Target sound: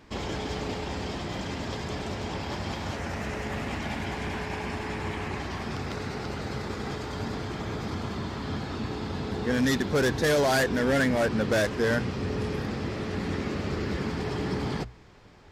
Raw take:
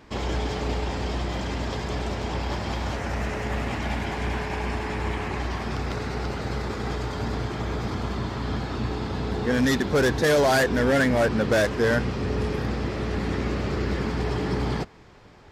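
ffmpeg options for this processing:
-af "equalizer=f=750:t=o:w=2.9:g=-2.5,bandreject=f=60:t=h:w=6,bandreject=f=120:t=h:w=6,volume=-1.5dB"

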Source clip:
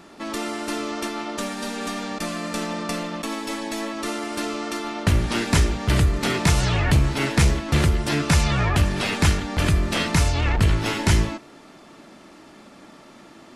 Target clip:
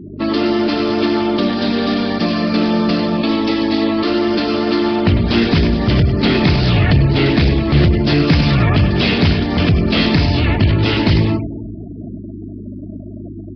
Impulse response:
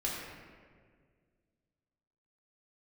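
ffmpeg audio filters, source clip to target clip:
-filter_complex "[0:a]aeval=exprs='val(0)+0.00562*(sin(2*PI*50*n/s)+sin(2*PI*2*50*n/s)/2+sin(2*PI*3*50*n/s)/3+sin(2*PI*4*50*n/s)/4+sin(2*PI*5*50*n/s)/5)':c=same,asplit=2[a][b];[b]acompressor=threshold=-26dB:ratio=12,volume=2.5dB[c];[a][c]amix=inputs=2:normalize=0,highpass=120,equalizer=f=1.1k:w=0.37:g=-9,aecho=1:1:100|200|300|400|500|600:0.282|0.147|0.0762|0.0396|0.0206|0.0107,acontrast=72,asoftclip=type=tanh:threshold=-10.5dB,asplit=2[d][e];[e]asuperstop=centerf=1200:order=20:qfactor=4.3[f];[1:a]atrim=start_sample=2205[g];[f][g]afir=irnorm=-1:irlink=0,volume=-14.5dB[h];[d][h]amix=inputs=2:normalize=0,afftfilt=real='re*gte(hypot(re,im),0.0501)':imag='im*gte(hypot(re,im),0.0501)':win_size=1024:overlap=0.75,volume=4dB" -ar 11025 -c:a nellymoser

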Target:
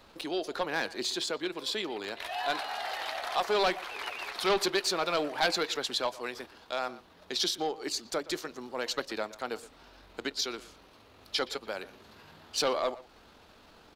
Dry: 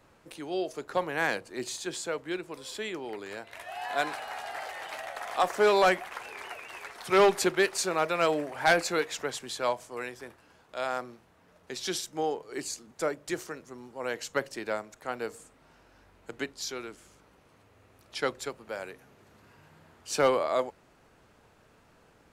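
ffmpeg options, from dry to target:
-filter_complex "[0:a]atempo=1.6,asplit=2[a][b];[b]acompressor=threshold=-39dB:ratio=6,volume=1.5dB[c];[a][c]amix=inputs=2:normalize=0,asoftclip=type=tanh:threshold=-19dB,equalizer=f=125:t=o:w=1:g=-10,equalizer=f=500:t=o:w=1:g=-3,equalizer=f=2k:t=o:w=1:g=-4,equalizer=f=4k:t=o:w=1:g=9,equalizer=f=8k:t=o:w=1:g=-7,asplit=2[d][e];[e]adelay=120,highpass=300,lowpass=3.4k,asoftclip=type=hard:threshold=-25dB,volume=-17dB[f];[d][f]amix=inputs=2:normalize=0"

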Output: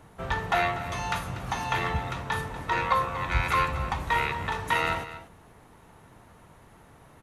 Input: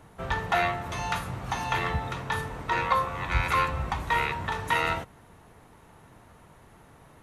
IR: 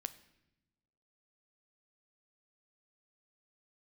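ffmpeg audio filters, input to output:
-af "aecho=1:1:241:0.2"

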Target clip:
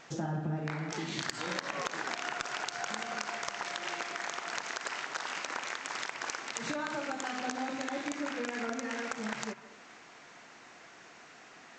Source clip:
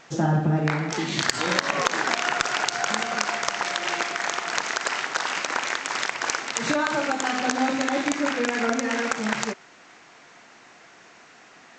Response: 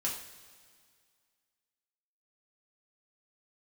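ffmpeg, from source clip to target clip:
-filter_complex "[0:a]acompressor=threshold=-36dB:ratio=2,asplit=2[a][b];[1:a]atrim=start_sample=2205,lowpass=2.2k,adelay=145[c];[b][c]afir=irnorm=-1:irlink=0,volume=-16.5dB[d];[a][d]amix=inputs=2:normalize=0,volume=-3.5dB"

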